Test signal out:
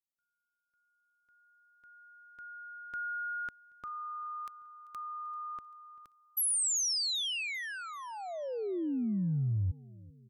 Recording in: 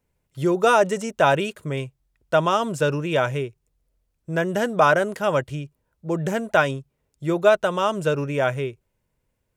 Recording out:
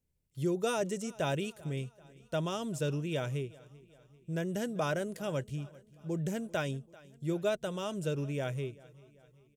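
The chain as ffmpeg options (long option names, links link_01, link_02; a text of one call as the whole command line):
ffmpeg -i in.wav -af "equalizer=frequency=1100:width=0.55:gain=-14,aecho=1:1:390|780|1170|1560:0.0794|0.0405|0.0207|0.0105,volume=-6dB" out.wav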